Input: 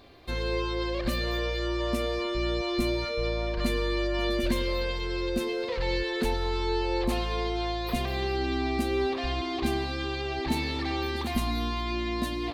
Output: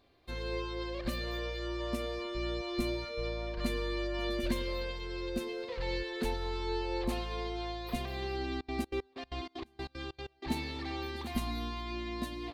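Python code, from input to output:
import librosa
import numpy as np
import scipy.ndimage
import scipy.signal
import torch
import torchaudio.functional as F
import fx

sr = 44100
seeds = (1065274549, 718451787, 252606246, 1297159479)

y = fx.step_gate(x, sr, bpm=190, pattern='.x..x.xx', floor_db=-24.0, edge_ms=4.5, at=(8.59, 10.46), fade=0.02)
y = fx.upward_expand(y, sr, threshold_db=-42.0, expansion=1.5)
y = y * 10.0 ** (-4.5 / 20.0)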